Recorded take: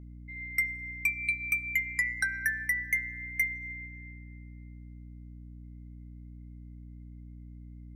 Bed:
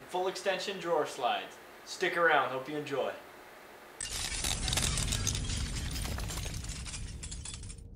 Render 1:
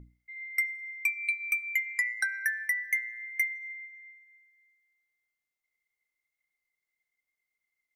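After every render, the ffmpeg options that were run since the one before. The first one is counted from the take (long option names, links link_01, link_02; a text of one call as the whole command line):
ffmpeg -i in.wav -af "bandreject=frequency=60:width_type=h:width=6,bandreject=frequency=120:width_type=h:width=6,bandreject=frequency=180:width_type=h:width=6,bandreject=frequency=240:width_type=h:width=6,bandreject=frequency=300:width_type=h:width=6" out.wav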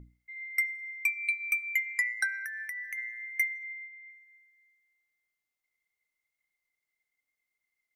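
ffmpeg -i in.wav -filter_complex "[0:a]asplit=3[link_01][link_02][link_03];[link_01]afade=type=out:start_time=2.43:duration=0.02[link_04];[link_02]acompressor=threshold=-35dB:ratio=6:attack=3.2:release=140:knee=1:detection=peak,afade=type=in:start_time=2.43:duration=0.02,afade=type=out:start_time=2.97:duration=0.02[link_05];[link_03]afade=type=in:start_time=2.97:duration=0.02[link_06];[link_04][link_05][link_06]amix=inputs=3:normalize=0,asettb=1/sr,asplit=3[link_07][link_08][link_09];[link_07]atrim=end=3.634[link_10];[link_08]atrim=start=3.63:end=4.1,asetpts=PTS-STARTPTS,afade=type=in:duration=0.004:curve=qsin,afade=type=out:start_time=0.466:duration=0.004:curve=qsin,highpass=250,equalizer=frequency=310:width_type=q:width=4:gain=8,equalizer=frequency=580:width_type=q:width=4:gain=7,equalizer=frequency=1100:width_type=q:width=4:gain=8,equalizer=frequency=1600:width_type=q:width=4:gain=-10,equalizer=frequency=2300:width_type=q:width=4:gain=3,lowpass=frequency=3300:width=0.5412,lowpass=frequency=3300:width=1.3066[link_11];[link_09]atrim=start=4.096[link_12];[link_10][link_11]acrossfade=duration=0.004:curve1=hsin:curve2=qsin[link_13];[link_13][link_12]acrossfade=duration=0.004:curve1=qsin:curve2=hsin" out.wav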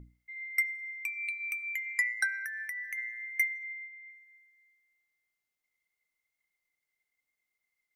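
ffmpeg -i in.wav -filter_complex "[0:a]asettb=1/sr,asplit=3[link_01][link_02][link_03];[link_01]atrim=end=0.624[link_04];[link_02]atrim=start=0.62:end=1.92,asetpts=PTS-STARTPTS,afade=type=in:duration=0.004:curve=qsin,afade=type=out:start_time=1.296:duration=0.004:curve=qsin,acompressor=threshold=-32dB:ratio=4:attack=3.2:release=140:knee=1:detection=peak[link_05];[link_03]atrim=start=1.916[link_06];[link_04][link_05]acrossfade=duration=0.004:curve1=hsin:curve2=qsin[link_07];[link_07][link_06]acrossfade=duration=0.004:curve1=qsin:curve2=hsin" out.wav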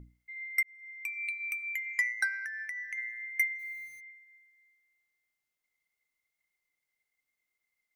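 ffmpeg -i in.wav -filter_complex "[0:a]asettb=1/sr,asplit=3[link_01][link_02][link_03];[link_01]atrim=end=1.934[link_04];[link_02]atrim=start=1.93:end=2.98,asetpts=PTS-STARTPTS,afade=type=in:duration=0.004:curve=qsin,afade=type=out:start_time=1.046:duration=0.004:curve=qsin,adynamicsmooth=sensitivity=7.5:basefreq=5400[link_05];[link_03]atrim=start=2.976[link_06];[link_04][link_05]acrossfade=duration=0.004:curve1=hsin:curve2=qsin[link_07];[link_07][link_06]acrossfade=duration=0.004:curve1=qsin:curve2=hsin,asplit=3[link_08][link_09][link_10];[link_08]afade=type=out:start_time=3.58:duration=0.02[link_11];[link_09]aeval=exprs='val(0)*gte(abs(val(0)),0.00266)':channel_layout=same,afade=type=in:start_time=3.58:duration=0.02,afade=type=out:start_time=3.99:duration=0.02[link_12];[link_10]afade=type=in:start_time=3.99:duration=0.02[link_13];[link_11][link_12][link_13]amix=inputs=3:normalize=0,asplit=2[link_14][link_15];[link_14]atrim=end=0.63,asetpts=PTS-STARTPTS,afade=type=out:start_time=0.626:duration=0.004:curve=hsin[link_16];[link_15]atrim=start=0.63,asetpts=PTS-STARTPTS,afade=type=in:duration=0.52[link_17];[link_16][link_17]concat=n=2:v=0:a=1" out.wav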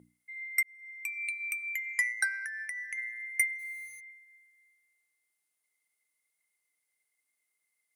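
ffmpeg -i in.wav -af "highpass=210,equalizer=frequency=9800:width_type=o:width=0.55:gain=14" out.wav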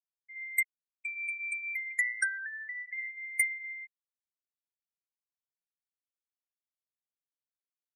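ffmpeg -i in.wav -af "afftfilt=real='re*gte(hypot(re,im),0.0708)':imag='im*gte(hypot(re,im),0.0708)':win_size=1024:overlap=0.75" out.wav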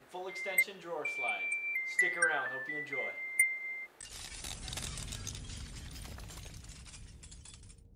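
ffmpeg -i in.wav -i bed.wav -filter_complex "[1:a]volume=-10dB[link_01];[0:a][link_01]amix=inputs=2:normalize=0" out.wav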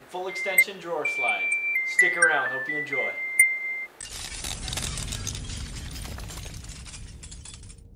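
ffmpeg -i in.wav -af "volume=10dB" out.wav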